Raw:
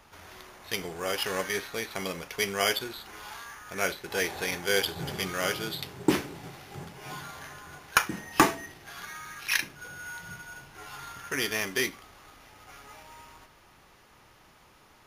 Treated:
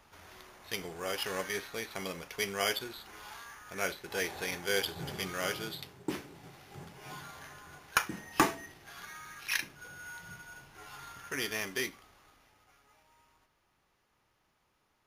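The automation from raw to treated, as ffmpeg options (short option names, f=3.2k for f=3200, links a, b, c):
-af "volume=2.5dB,afade=t=out:st=5.63:d=0.41:silence=0.398107,afade=t=in:st=6.04:d=0.9:silence=0.421697,afade=t=out:st=11.68:d=1.09:silence=0.266073"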